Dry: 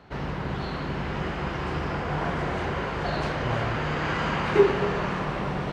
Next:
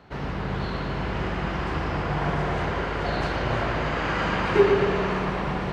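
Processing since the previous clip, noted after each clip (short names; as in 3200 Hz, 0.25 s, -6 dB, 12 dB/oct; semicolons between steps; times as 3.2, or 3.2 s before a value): analogue delay 0.117 s, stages 4096, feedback 59%, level -5 dB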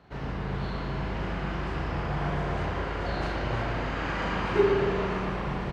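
low shelf 230 Hz +3 dB; doubler 36 ms -4.5 dB; gain -6.5 dB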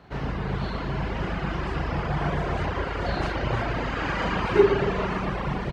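reverb removal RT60 0.87 s; gain +5.5 dB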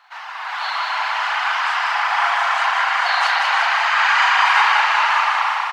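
steep high-pass 810 Hz 48 dB/oct; AGC gain up to 9 dB; feedback echo 0.189 s, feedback 57%, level -4 dB; gain +5 dB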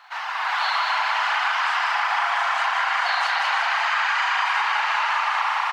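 compressor 12:1, threshold -22 dBFS, peak gain reduction 12 dB; gain +3.5 dB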